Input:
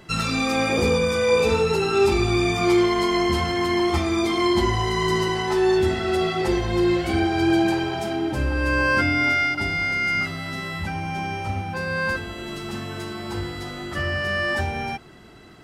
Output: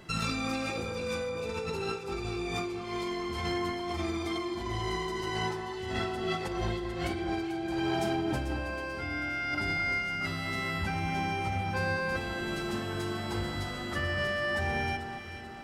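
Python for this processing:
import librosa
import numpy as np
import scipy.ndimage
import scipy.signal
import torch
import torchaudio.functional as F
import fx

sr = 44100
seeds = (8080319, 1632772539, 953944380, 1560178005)

y = fx.over_compress(x, sr, threshold_db=-26.0, ratio=-1.0)
y = fx.echo_alternate(y, sr, ms=220, hz=1600.0, feedback_pct=70, wet_db=-7.0)
y = F.gain(torch.from_numpy(y), -7.5).numpy()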